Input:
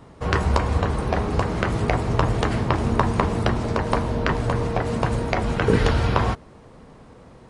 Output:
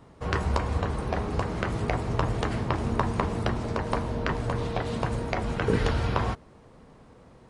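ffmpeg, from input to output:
-filter_complex "[0:a]asettb=1/sr,asplit=3[s0][s1][s2];[s0]atrim=end=4.584[s3];[s1]atrim=start=4.58:end=5.03,asetpts=PTS-STARTPTS,afade=t=in:d=0.004:c=qsin,afade=t=out:st=0.446:d=0.004:c=qsin,equalizer=f=3600:w=1.9:g=8[s4];[s2]atrim=start=5.026[s5];[s3][s4]acrossfade=d=0.004:c1=hsin:c2=qsin[s6];[s6][s5]acrossfade=d=0.004:c1=qsin:c2=hsin,volume=0.501"

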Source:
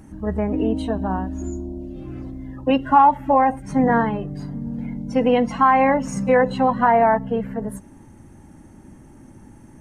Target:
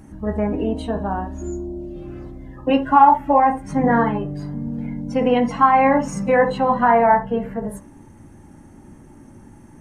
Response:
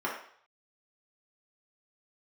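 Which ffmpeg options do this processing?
-filter_complex "[0:a]asplit=2[s0][s1];[1:a]atrim=start_sample=2205,atrim=end_sample=3087,adelay=15[s2];[s1][s2]afir=irnorm=-1:irlink=0,volume=0.237[s3];[s0][s3]amix=inputs=2:normalize=0"

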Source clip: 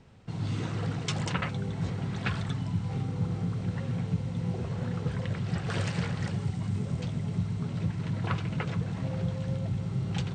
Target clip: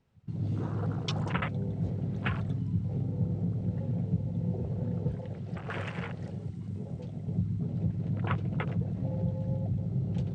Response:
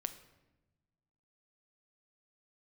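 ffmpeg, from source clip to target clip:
-filter_complex "[0:a]afwtdn=0.0126,asettb=1/sr,asplit=3[s0][s1][s2];[s0]atrim=end=5.154[s3];[s1]atrim=start=5.15:end=7.28,asetpts=PTS-STARTPTS,afade=t=in:d=0.004:c=qsin,afade=t=out:st=2.126:d=0.004:c=qsin,lowshelf=f=310:g=-8[s4];[s2]atrim=start=7.276[s5];[s3][s4]acrossfade=d=0.004:c1=hsin:c2=qsin[s6];[s6][s5]acrossfade=d=0.004:c1=qsin:c2=hsin"

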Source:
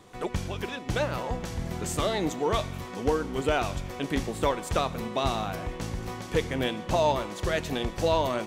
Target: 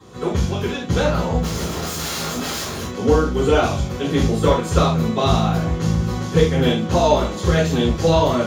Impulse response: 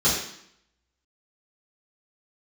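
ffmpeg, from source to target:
-filter_complex "[0:a]asplit=3[s0][s1][s2];[s0]afade=t=out:st=1.41:d=0.02[s3];[s1]aeval=exprs='(mod(28.2*val(0)+1,2)-1)/28.2':c=same,afade=t=in:st=1.41:d=0.02,afade=t=out:st=2.92:d=0.02[s4];[s2]afade=t=in:st=2.92:d=0.02[s5];[s3][s4][s5]amix=inputs=3:normalize=0[s6];[1:a]atrim=start_sample=2205,afade=t=out:st=0.14:d=0.01,atrim=end_sample=6615,asetrate=43659,aresample=44100[s7];[s6][s7]afir=irnorm=-1:irlink=0,volume=0.447"

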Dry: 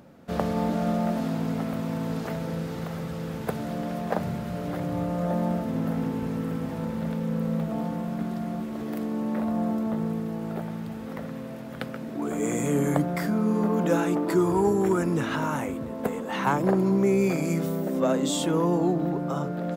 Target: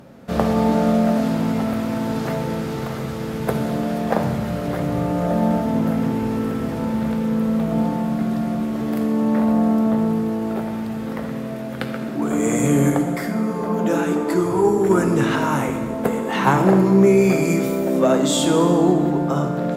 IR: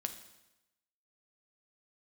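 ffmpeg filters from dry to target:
-filter_complex "[0:a]asettb=1/sr,asplit=3[s0][s1][s2];[s0]atrim=end=12.904[s3];[s1]atrim=start=12.9:end=14.9,asetpts=PTS-STARTPTS,afade=t=in:d=0.004:c=qsin,afade=t=out:st=1.996:d=0.004:c=qsin,flanger=delay=0.7:depth=8.6:regen=-40:speed=1.5:shape=triangular[s4];[s2]atrim=start=14.896[s5];[s3][s4]acrossfade=d=0.004:c1=hsin:c2=qsin[s6];[s6][s5]acrossfade=d=0.004:c1=qsin:c2=hsin[s7];[1:a]atrim=start_sample=2205,asetrate=27783,aresample=44100[s8];[s7][s8]afir=irnorm=-1:irlink=0,volume=1.88"

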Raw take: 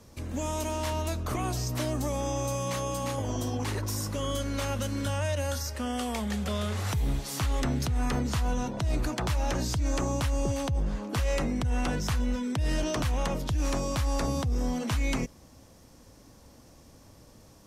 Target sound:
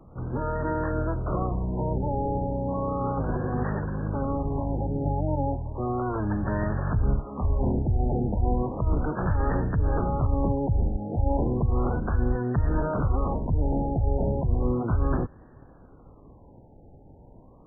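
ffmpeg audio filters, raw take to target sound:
-filter_complex "[0:a]acrossover=split=8100[s0][s1];[s1]acompressor=threshold=0.00282:ratio=4:attack=1:release=60[s2];[s0][s2]amix=inputs=2:normalize=0,asplit=4[s3][s4][s5][s6];[s4]asetrate=22050,aresample=44100,atempo=2,volume=0.891[s7];[s5]asetrate=66075,aresample=44100,atempo=0.66742,volume=0.794[s8];[s6]asetrate=88200,aresample=44100,atempo=0.5,volume=0.282[s9];[s3][s7][s8][s9]amix=inputs=4:normalize=0,afftfilt=real='re*lt(b*sr/1024,890*pow(1900/890,0.5+0.5*sin(2*PI*0.34*pts/sr)))':imag='im*lt(b*sr/1024,890*pow(1900/890,0.5+0.5*sin(2*PI*0.34*pts/sr)))':win_size=1024:overlap=0.75"

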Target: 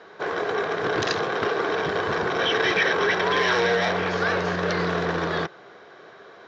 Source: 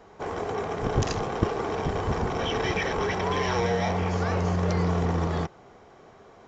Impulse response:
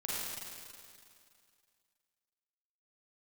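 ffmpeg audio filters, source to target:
-af "acontrast=43,aeval=exprs='0.211*(abs(mod(val(0)/0.211+3,4)-2)-1)':c=same,highpass=230,equalizer=f=240:t=q:w=4:g=-9,equalizer=f=820:t=q:w=4:g=-6,equalizer=f=1600:t=q:w=4:g=9,equalizer=f=3800:t=q:w=4:g=7,lowpass=f=5500:w=0.5412,lowpass=f=5500:w=1.3066"

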